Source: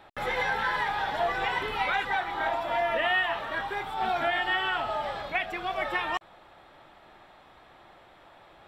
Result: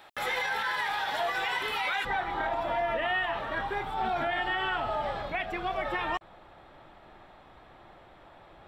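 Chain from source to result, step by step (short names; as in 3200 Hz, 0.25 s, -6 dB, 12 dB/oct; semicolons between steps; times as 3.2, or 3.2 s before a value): tilt +2.5 dB/oct, from 2.04 s -1.5 dB/oct; limiter -21.5 dBFS, peak gain reduction 6.5 dB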